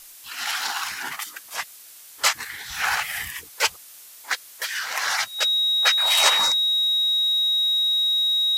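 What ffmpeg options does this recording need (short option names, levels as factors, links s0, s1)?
-af "bandreject=f=3800:w=30,afftdn=nr=24:nf=-45"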